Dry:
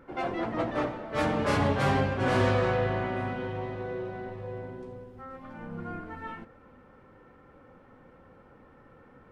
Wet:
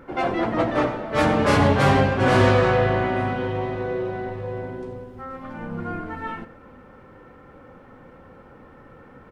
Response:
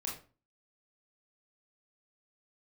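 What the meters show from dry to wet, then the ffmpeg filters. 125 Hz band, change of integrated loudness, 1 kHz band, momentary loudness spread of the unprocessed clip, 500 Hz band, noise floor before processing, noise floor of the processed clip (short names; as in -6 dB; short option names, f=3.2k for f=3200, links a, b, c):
+8.0 dB, +8.0 dB, +8.0 dB, 18 LU, +8.0 dB, -56 dBFS, -48 dBFS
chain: -filter_complex "[0:a]asplit=2[a][b];[b]adelay=99.13,volume=-16dB,highshelf=f=4k:g=-2.23[c];[a][c]amix=inputs=2:normalize=0,volume=8dB"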